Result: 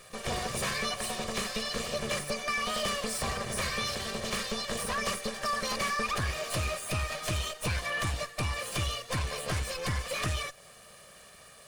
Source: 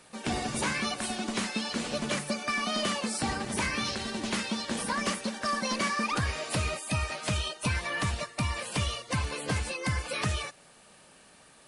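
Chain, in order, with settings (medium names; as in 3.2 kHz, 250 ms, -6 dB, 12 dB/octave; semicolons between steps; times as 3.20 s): comb filter that takes the minimum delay 1.7 ms; in parallel at -2.5 dB: compression, threshold -43 dBFS, peak gain reduction 15.5 dB; on the sum: saturation -23 dBFS, distortion -19 dB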